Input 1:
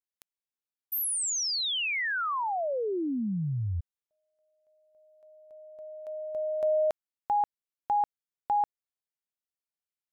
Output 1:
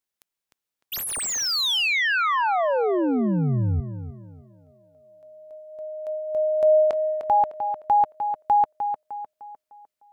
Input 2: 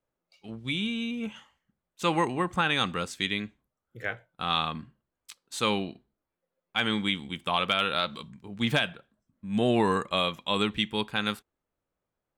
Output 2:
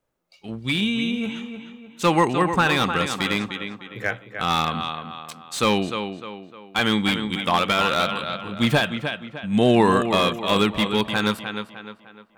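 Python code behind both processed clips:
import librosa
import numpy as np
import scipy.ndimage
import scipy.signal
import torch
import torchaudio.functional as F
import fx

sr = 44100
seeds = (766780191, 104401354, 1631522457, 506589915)

y = fx.echo_tape(x, sr, ms=303, feedback_pct=45, wet_db=-7.5, lp_hz=3100.0, drive_db=8.0, wow_cents=9)
y = fx.slew_limit(y, sr, full_power_hz=140.0)
y = y * librosa.db_to_amplitude(7.5)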